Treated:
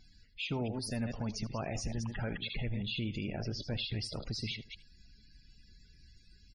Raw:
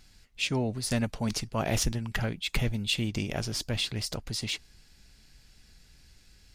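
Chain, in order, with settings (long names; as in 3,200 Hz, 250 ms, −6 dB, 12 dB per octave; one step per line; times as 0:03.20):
delay that plays each chunk backwards 113 ms, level −9.5 dB
0:03.31–0:03.77: high-shelf EQ 5,000 Hz → 2,700 Hz −9.5 dB
brickwall limiter −25.5 dBFS, peak gain reduction 11 dB
spectral peaks only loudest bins 64
single-tap delay 78 ms −18.5 dB
level −2 dB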